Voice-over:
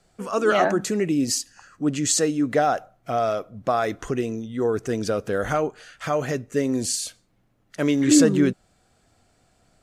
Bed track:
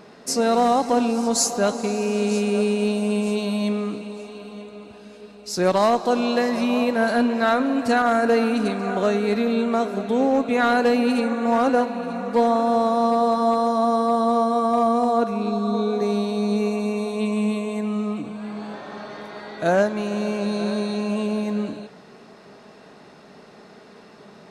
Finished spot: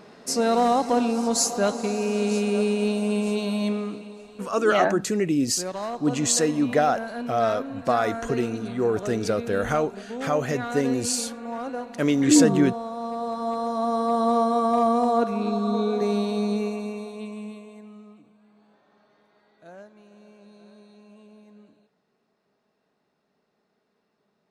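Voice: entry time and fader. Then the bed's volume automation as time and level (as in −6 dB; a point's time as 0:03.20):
4.20 s, −0.5 dB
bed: 0:03.69 −2 dB
0:04.64 −13 dB
0:12.92 −13 dB
0:14.29 −1.5 dB
0:16.37 −1.5 dB
0:18.46 −26.5 dB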